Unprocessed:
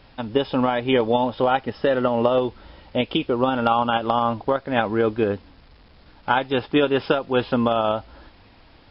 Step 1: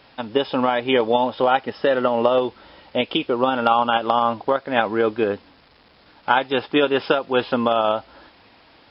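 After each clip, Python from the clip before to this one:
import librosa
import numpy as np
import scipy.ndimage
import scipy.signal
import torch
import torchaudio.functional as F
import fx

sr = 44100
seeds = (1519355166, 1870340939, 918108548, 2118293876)

y = fx.highpass(x, sr, hz=340.0, slope=6)
y = y * librosa.db_to_amplitude(3.0)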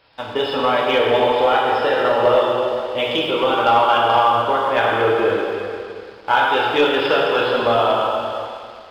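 y = fx.rev_plate(x, sr, seeds[0], rt60_s=2.5, hf_ratio=1.0, predelay_ms=0, drr_db=-4.5)
y = fx.leveller(y, sr, passes=1)
y = fx.peak_eq(y, sr, hz=230.0, db=-10.5, octaves=0.78)
y = y * librosa.db_to_amplitude(-4.5)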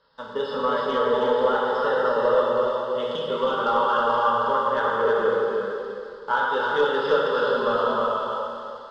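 y = scipy.signal.sosfilt(scipy.signal.butter(2, 5600.0, 'lowpass', fs=sr, output='sos'), x)
y = fx.fixed_phaser(y, sr, hz=480.0, stages=8)
y = y + 10.0 ** (-3.5 / 20.0) * np.pad(y, (int(319 * sr / 1000.0), 0))[:len(y)]
y = y * librosa.db_to_amplitude(-4.0)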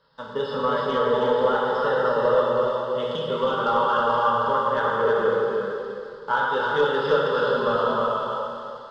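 y = fx.peak_eq(x, sr, hz=140.0, db=9.5, octaves=0.61)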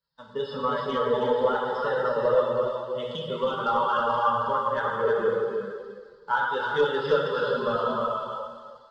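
y = fx.bin_expand(x, sr, power=1.5)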